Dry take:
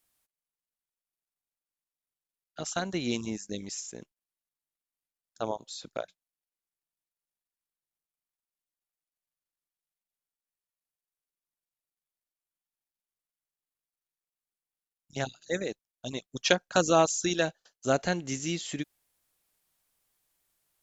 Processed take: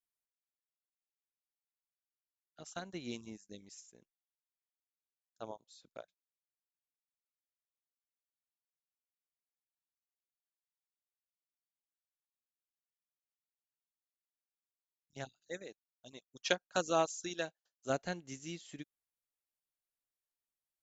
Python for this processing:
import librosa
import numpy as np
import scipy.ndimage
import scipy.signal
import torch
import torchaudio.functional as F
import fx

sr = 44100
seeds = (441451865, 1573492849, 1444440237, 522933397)

y = fx.low_shelf(x, sr, hz=210.0, db=-7.0, at=(15.52, 17.9))
y = fx.upward_expand(y, sr, threshold_db=-48.0, expansion=1.5)
y = y * librosa.db_to_amplitude(-7.0)